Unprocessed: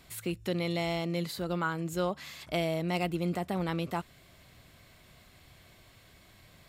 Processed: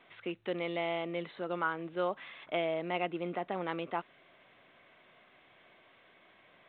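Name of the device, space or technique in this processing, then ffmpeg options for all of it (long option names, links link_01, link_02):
telephone: -af "highpass=350,lowpass=3000" -ar 8000 -c:a pcm_mulaw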